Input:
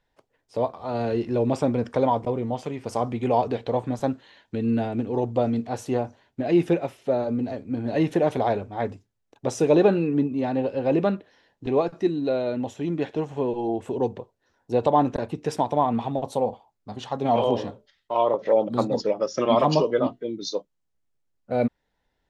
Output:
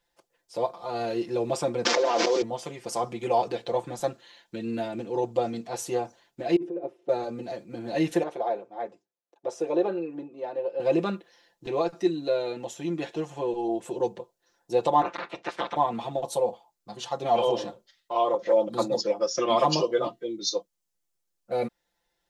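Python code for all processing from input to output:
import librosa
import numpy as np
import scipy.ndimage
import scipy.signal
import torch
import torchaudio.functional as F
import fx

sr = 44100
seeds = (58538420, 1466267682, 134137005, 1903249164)

y = fx.chain(x, sr, fx.delta_mod(bps=32000, step_db=-38.0),
    fx.highpass(hz=280.0, slope=24),
    fx.env_flatten(amount_pct=100), at=(1.85, 2.42))
y = fx.chain(y, sr, fx.bandpass_q(hz=360.0, q=3.2),
    fx.over_compress(threshold_db=-29.0, ratio=-1.0), at=(6.56, 7.09))
y = fx.chain(y, sr, fx.bandpass_q(hz=500.0, q=0.99),
    fx.tilt_eq(slope=2.0), at=(8.23, 10.8))
y = fx.spec_clip(y, sr, under_db=27, at=(15.01, 15.75), fade=0.02)
y = fx.ring_mod(y, sr, carrier_hz=170.0, at=(15.01, 15.75), fade=0.02)
y = fx.bandpass_edges(y, sr, low_hz=140.0, high_hz=2200.0, at=(15.01, 15.75), fade=0.02)
y = fx.bass_treble(y, sr, bass_db=-8, treble_db=10)
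y = y + 0.92 * np.pad(y, (int(5.8 * sr / 1000.0), 0))[:len(y)]
y = y * librosa.db_to_amplitude(-4.5)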